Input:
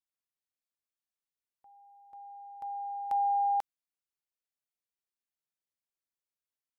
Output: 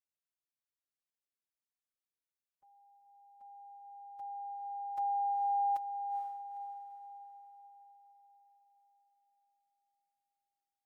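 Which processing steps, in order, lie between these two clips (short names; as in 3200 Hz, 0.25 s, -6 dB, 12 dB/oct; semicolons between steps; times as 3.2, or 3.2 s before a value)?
time stretch by phase-locked vocoder 1.6×; diffused feedback echo 0.462 s, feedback 47%, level -7 dB; gain -6.5 dB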